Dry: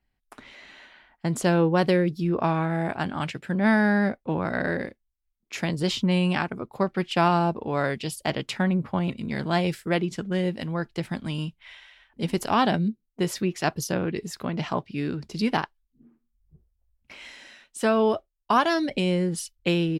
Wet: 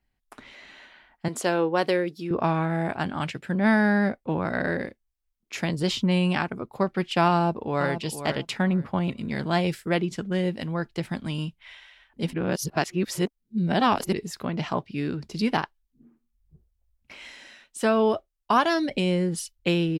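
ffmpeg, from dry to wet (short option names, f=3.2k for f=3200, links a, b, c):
-filter_complex "[0:a]asettb=1/sr,asplit=3[a][b][c];[a]atrim=end=1.284[d];[b]atrim=start=1.28:end=2.31,asetpts=PTS-STARTPTS,afade=t=in:d=0.004:c=qsin,afade=t=out:st=1.026:d=0.004:c=qsin,highpass=330[e];[c]atrim=start=2.306[f];[d][e]acrossfade=d=0.004:c1=hsin:c2=qsin[g];[g][f]acrossfade=d=0.004:c1=qsin:c2=hsin,asplit=2[h][i];[i]afade=t=in:st=7.33:d=0.01,afade=t=out:st=7.9:d=0.01,aecho=0:1:470|940|1410:0.334965|0.0669931|0.0133986[j];[h][j]amix=inputs=2:normalize=0,asplit=3[k][l][m];[k]atrim=end=12.332[n];[l]atrim=start=12.328:end=14.132,asetpts=PTS-STARTPTS,areverse[o];[m]atrim=start=14.128[p];[n][o]acrossfade=d=0.004:c1=hsin:c2=hsin[q];[q][p]acrossfade=d=0.004:c1=hsin:c2=hsin"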